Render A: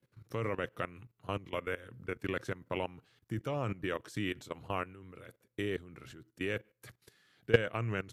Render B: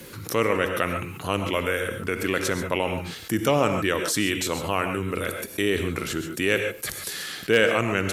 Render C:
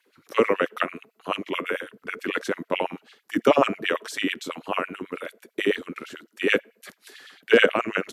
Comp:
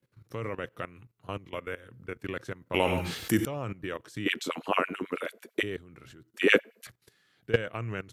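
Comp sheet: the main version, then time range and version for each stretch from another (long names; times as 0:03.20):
A
0:02.74–0:03.45: punch in from B
0:04.26–0:05.63: punch in from C
0:06.34–0:06.87: punch in from C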